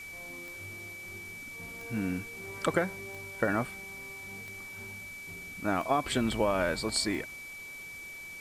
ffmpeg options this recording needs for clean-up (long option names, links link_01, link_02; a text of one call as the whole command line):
ffmpeg -i in.wav -af "adeclick=threshold=4,bandreject=frequency=2300:width=30,afwtdn=0.0025" out.wav